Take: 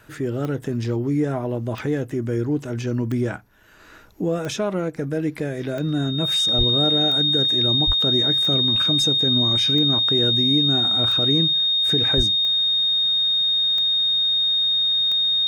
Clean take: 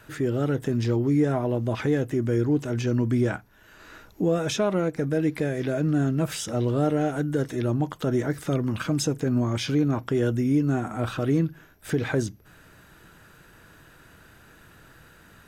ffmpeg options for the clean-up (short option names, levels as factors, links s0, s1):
-filter_complex "[0:a]adeclick=t=4,bandreject=f=3700:w=30,asplit=3[s0][s1][s2];[s0]afade=t=out:st=6.57:d=0.02[s3];[s1]highpass=f=140:w=0.5412,highpass=f=140:w=1.3066,afade=t=in:st=6.57:d=0.02,afade=t=out:st=6.69:d=0.02[s4];[s2]afade=t=in:st=6.69:d=0.02[s5];[s3][s4][s5]amix=inputs=3:normalize=0,asplit=3[s6][s7][s8];[s6]afade=t=out:st=7.86:d=0.02[s9];[s7]highpass=f=140:w=0.5412,highpass=f=140:w=1.3066,afade=t=in:st=7.86:d=0.02,afade=t=out:st=7.98:d=0.02[s10];[s8]afade=t=in:st=7.98:d=0.02[s11];[s9][s10][s11]amix=inputs=3:normalize=0,asplit=3[s12][s13][s14];[s12]afade=t=out:st=12.16:d=0.02[s15];[s13]highpass=f=140:w=0.5412,highpass=f=140:w=1.3066,afade=t=in:st=12.16:d=0.02,afade=t=out:st=12.28:d=0.02[s16];[s14]afade=t=in:st=12.28:d=0.02[s17];[s15][s16][s17]amix=inputs=3:normalize=0"